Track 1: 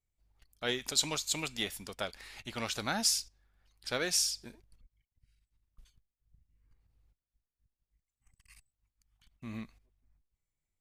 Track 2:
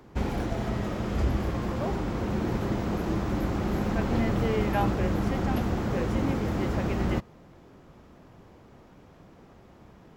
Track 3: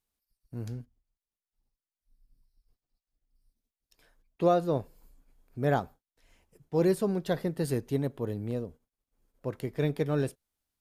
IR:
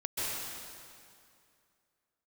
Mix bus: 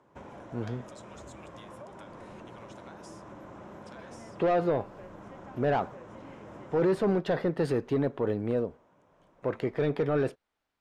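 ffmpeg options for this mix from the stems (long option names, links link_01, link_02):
-filter_complex "[0:a]bandreject=frequency=620:width=12,acompressor=threshold=-40dB:ratio=6,volume=-6dB[link_01];[1:a]volume=-13dB[link_02];[2:a]aemphasis=mode=reproduction:type=75fm,asplit=2[link_03][link_04];[link_04]highpass=frequency=720:poles=1,volume=18dB,asoftclip=type=tanh:threshold=-12.5dB[link_05];[link_03][link_05]amix=inputs=2:normalize=0,lowpass=frequency=2300:poles=1,volume=-6dB,volume=0.5dB,asplit=2[link_06][link_07];[link_07]apad=whole_len=476460[link_08];[link_01][link_08]sidechaincompress=threshold=-28dB:ratio=8:attack=16:release=1480[link_09];[link_09][link_02]amix=inputs=2:normalize=0,highpass=120,equalizer=frequency=220:width_type=q:width=4:gain=-3,equalizer=frequency=590:width_type=q:width=4:gain=9,equalizer=frequency=1000:width_type=q:width=4:gain=9,equalizer=frequency=1500:width_type=q:width=4:gain=4,equalizer=frequency=4500:width_type=q:width=4:gain=-10,lowpass=frequency=9800:width=0.5412,lowpass=frequency=9800:width=1.3066,acompressor=threshold=-43dB:ratio=6,volume=0dB[link_10];[link_06][link_10]amix=inputs=2:normalize=0,alimiter=limit=-19dB:level=0:latency=1:release=16"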